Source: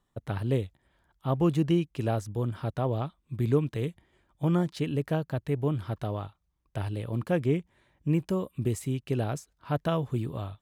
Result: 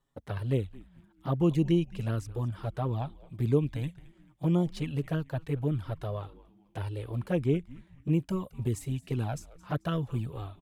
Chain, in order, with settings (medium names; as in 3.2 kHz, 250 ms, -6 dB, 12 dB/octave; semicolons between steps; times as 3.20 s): touch-sensitive flanger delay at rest 7.3 ms, full sweep at -20.5 dBFS; frequency-shifting echo 219 ms, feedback 37%, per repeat -150 Hz, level -19.5 dB